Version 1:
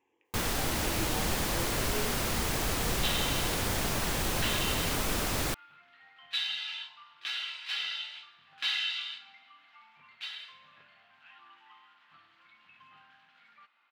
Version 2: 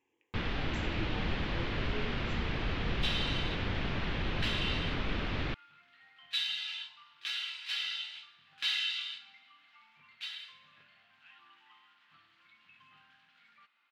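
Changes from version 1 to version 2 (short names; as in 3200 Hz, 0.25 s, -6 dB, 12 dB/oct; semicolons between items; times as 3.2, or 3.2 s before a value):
first sound: add inverse Chebyshev low-pass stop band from 9700 Hz, stop band 60 dB; master: add bell 760 Hz -7 dB 2.1 oct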